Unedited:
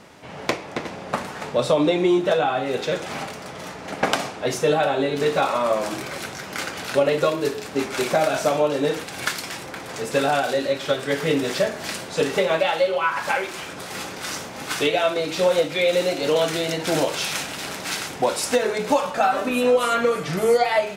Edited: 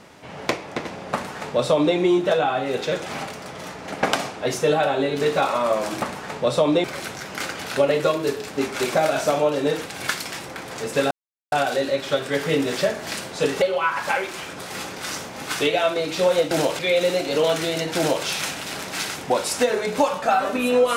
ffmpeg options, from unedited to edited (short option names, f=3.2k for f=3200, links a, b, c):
-filter_complex "[0:a]asplit=7[a][b][c][d][e][f][g];[a]atrim=end=6.022[h];[b]atrim=start=1.138:end=1.962[i];[c]atrim=start=6.018:end=10.29,asetpts=PTS-STARTPTS,afade=t=out:st=4.268:d=0.004:c=hsin,apad=pad_dur=0.41[j];[d]atrim=start=10.29:end=12.392,asetpts=PTS-STARTPTS,afade=t=in:d=0.004:c=hsin[k];[e]atrim=start=12.818:end=15.712[l];[f]atrim=start=16.888:end=17.172[m];[g]atrim=start=15.708[n];[h][i]acrossfade=d=0.004:c1=hsin:c2=hsin[o];[j][k]concat=n=2:v=0:a=1[p];[o][p]acrossfade=d=0.004:c1=hsin:c2=hsin[q];[q][l]acrossfade=d=0.004:c1=hsin:c2=hsin[r];[r][m]acrossfade=d=0.004:c1=hsin:c2=hsin[s];[s][n]acrossfade=d=0.004:c1=hsin:c2=hsin"